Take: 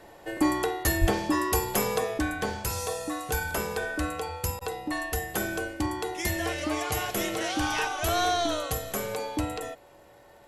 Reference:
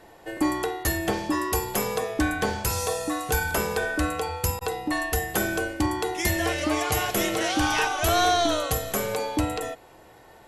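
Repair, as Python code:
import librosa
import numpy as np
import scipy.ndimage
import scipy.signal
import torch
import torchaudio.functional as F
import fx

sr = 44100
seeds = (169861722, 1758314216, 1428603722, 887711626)

y = fx.fix_declick_ar(x, sr, threshold=6.5)
y = fx.notch(y, sr, hz=570.0, q=30.0)
y = fx.fix_deplosive(y, sr, at_s=(1.0,))
y = fx.gain(y, sr, db=fx.steps((0.0, 0.0), (2.18, 4.5)))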